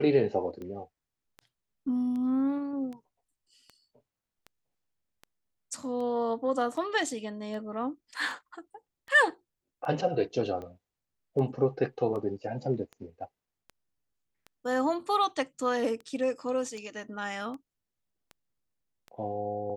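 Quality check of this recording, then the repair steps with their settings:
scratch tick 78 rpm −30 dBFS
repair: click removal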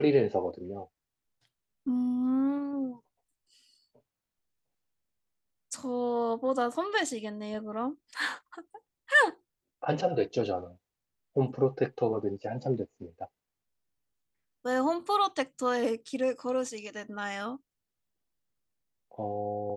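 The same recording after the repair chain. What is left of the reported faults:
none of them is left

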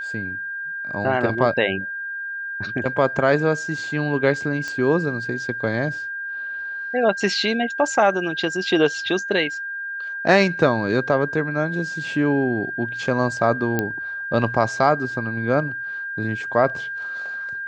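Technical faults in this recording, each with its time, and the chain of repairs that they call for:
whistle 1,600 Hz −27 dBFS
0:04.68: click −16 dBFS
0:13.79: click −8 dBFS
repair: click removal
notch filter 1,600 Hz, Q 30

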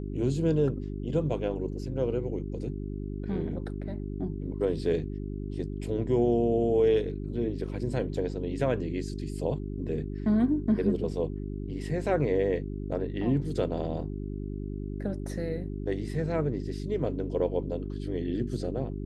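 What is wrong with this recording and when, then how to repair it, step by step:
mains hum 50 Hz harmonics 8 −35 dBFS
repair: hum removal 50 Hz, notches 8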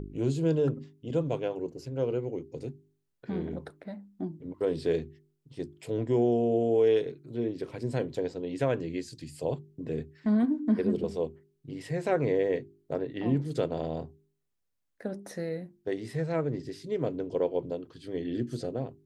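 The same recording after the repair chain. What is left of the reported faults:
none of them is left

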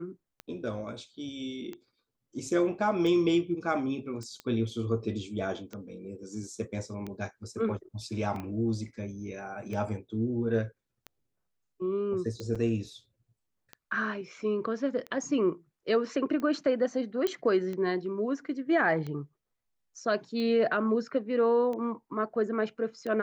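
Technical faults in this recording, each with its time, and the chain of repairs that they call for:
scratch tick 45 rpm −25 dBFS
0:04.23: click −29 dBFS
0:08.36: drop-out 2.2 ms
0:12.55–0:12.56: drop-out 5.8 ms
0:17.27: click −16 dBFS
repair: click removal
repair the gap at 0:08.36, 2.2 ms
repair the gap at 0:12.55, 5.8 ms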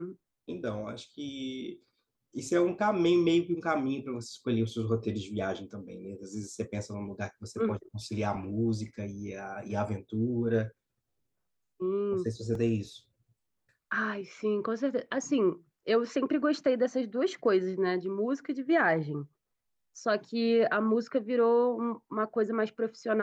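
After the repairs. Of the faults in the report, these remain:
none of them is left

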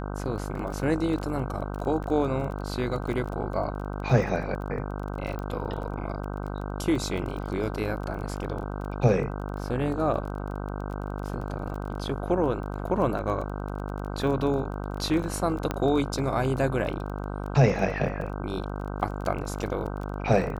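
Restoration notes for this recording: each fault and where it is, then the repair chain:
mains buzz 50 Hz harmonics 31 −33 dBFS
surface crackle 21 per second −34 dBFS
0:02.04: drop-out 2.1 ms
0:05.39: click −23 dBFS
0:15.71: click −13 dBFS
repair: click removal
hum removal 50 Hz, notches 31
repair the gap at 0:02.04, 2.1 ms

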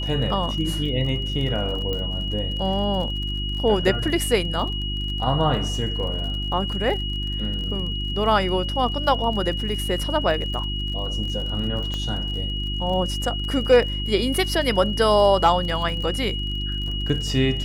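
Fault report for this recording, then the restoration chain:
surface crackle 37 per second −31 dBFS
mains hum 50 Hz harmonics 7 −28 dBFS
whistle 2,900 Hz −29 dBFS
0:01.93: click −15 dBFS
0:11.94: click −16 dBFS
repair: click removal
notch filter 2,900 Hz, Q 30
hum removal 50 Hz, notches 7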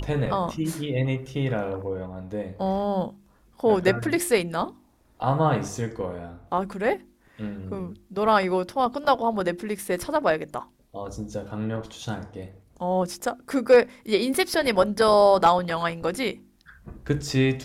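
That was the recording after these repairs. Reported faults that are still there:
0:11.94: click

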